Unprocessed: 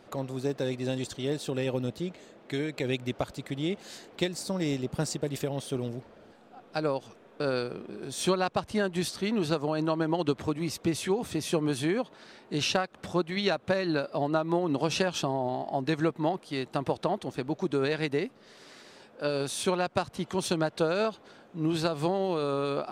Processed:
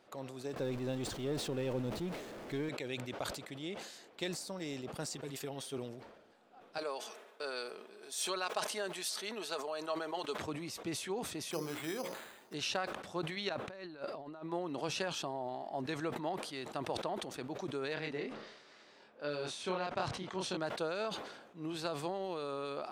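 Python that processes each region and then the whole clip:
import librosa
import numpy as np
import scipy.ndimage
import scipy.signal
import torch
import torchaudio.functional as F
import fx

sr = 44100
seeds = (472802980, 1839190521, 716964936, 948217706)

y = fx.chain(x, sr, fx.zero_step(step_db=-34.0),
    fx.tilt_eq(slope=-2.5), at=(0.56, 2.69))
y = fx.chain(y, sr, fx.low_shelf(hz=230.0, db=-4.0),
    fx.notch(hz=580.0, q=5.5),
    fx.comb(ms=7.5, depth=0.7), at=(5.15, 5.78))
y = fx.chain(y, sr, fx.highpass(hz=420.0, slope=12),
    fx.high_shelf(hz=5000.0, db=7.0),
    fx.comb(ms=4.7, depth=0.41), at=(6.78, 10.38))
y = fx.chain(y, sr, fx.hum_notches(base_hz=60, count=9),
    fx.resample_bad(factor=8, down='none', up='hold'), at=(11.51, 12.54))
y = fx.chain(y, sr, fx.over_compress(threshold_db=-34.0, ratio=-0.5),
    fx.high_shelf(hz=4600.0, db=-7.5), at=(13.49, 14.52))
y = fx.chain(y, sr, fx.air_absorb(metres=89.0),
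    fx.doubler(ms=27.0, db=-3.5), at=(17.94, 20.57))
y = fx.low_shelf(y, sr, hz=270.0, db=-10.5)
y = fx.sustainer(y, sr, db_per_s=55.0)
y = y * librosa.db_to_amplitude(-8.0)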